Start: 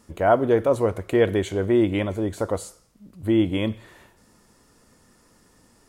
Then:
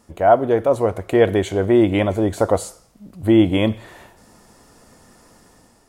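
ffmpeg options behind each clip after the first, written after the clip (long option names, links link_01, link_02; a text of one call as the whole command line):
ffmpeg -i in.wav -af "equalizer=frequency=720:width=2.4:gain=6.5,dynaudnorm=framelen=230:gausssize=5:maxgain=7dB" out.wav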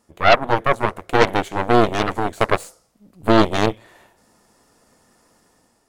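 ffmpeg -i in.wav -af "aeval=exprs='0.841*(cos(1*acos(clip(val(0)/0.841,-1,1)))-cos(1*PI/2))+0.133*(cos(5*acos(clip(val(0)/0.841,-1,1)))-cos(5*PI/2))+0.376*(cos(6*acos(clip(val(0)/0.841,-1,1)))-cos(6*PI/2))+0.299*(cos(7*acos(clip(val(0)/0.841,-1,1)))-cos(7*PI/2))':channel_layout=same,lowshelf=frequency=160:gain=-7,volume=-3.5dB" out.wav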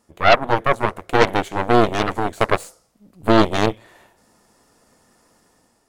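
ffmpeg -i in.wav -af anull out.wav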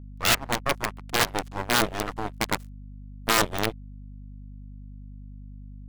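ffmpeg -i in.wav -af "aeval=exprs='sgn(val(0))*max(abs(val(0))-0.0355,0)':channel_layout=same,aeval=exprs='val(0)+0.0224*(sin(2*PI*50*n/s)+sin(2*PI*2*50*n/s)/2+sin(2*PI*3*50*n/s)/3+sin(2*PI*4*50*n/s)/4+sin(2*PI*5*50*n/s)/5)':channel_layout=same,aeval=exprs='(mod(1.68*val(0)+1,2)-1)/1.68':channel_layout=same,volume=-7.5dB" out.wav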